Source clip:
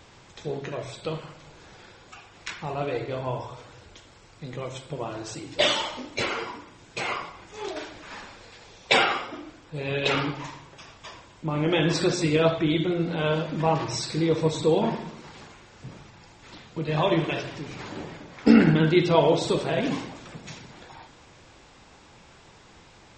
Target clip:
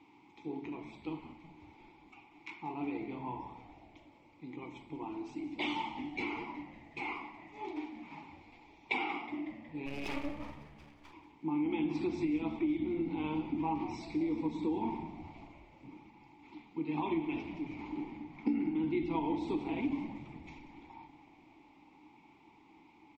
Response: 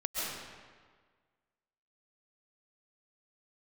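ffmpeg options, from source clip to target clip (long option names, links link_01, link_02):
-filter_complex "[0:a]asplit=3[link_01][link_02][link_03];[link_01]bandpass=frequency=300:width_type=q:width=8,volume=0dB[link_04];[link_02]bandpass=frequency=870:width_type=q:width=8,volume=-6dB[link_05];[link_03]bandpass=frequency=2240:width_type=q:width=8,volume=-9dB[link_06];[link_04][link_05][link_06]amix=inputs=3:normalize=0,acompressor=threshold=-34dB:ratio=6,asplit=3[link_07][link_08][link_09];[link_07]afade=type=out:start_time=9.85:duration=0.02[link_10];[link_08]aeval=exprs='max(val(0),0)':channel_layout=same,afade=type=in:start_time=9.85:duration=0.02,afade=type=out:start_time=11.12:duration=0.02[link_11];[link_09]afade=type=in:start_time=11.12:duration=0.02[link_12];[link_10][link_11][link_12]amix=inputs=3:normalize=0,asplit=7[link_13][link_14][link_15][link_16][link_17][link_18][link_19];[link_14]adelay=184,afreqshift=-73,volume=-15dB[link_20];[link_15]adelay=368,afreqshift=-146,volume=-19.4dB[link_21];[link_16]adelay=552,afreqshift=-219,volume=-23.9dB[link_22];[link_17]adelay=736,afreqshift=-292,volume=-28.3dB[link_23];[link_18]adelay=920,afreqshift=-365,volume=-32.7dB[link_24];[link_19]adelay=1104,afreqshift=-438,volume=-37.2dB[link_25];[link_13][link_20][link_21][link_22][link_23][link_24][link_25]amix=inputs=7:normalize=0,volume=4dB"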